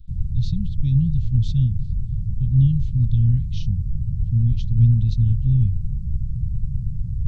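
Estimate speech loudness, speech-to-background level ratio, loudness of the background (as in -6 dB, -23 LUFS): -21.5 LUFS, 6.5 dB, -28.0 LUFS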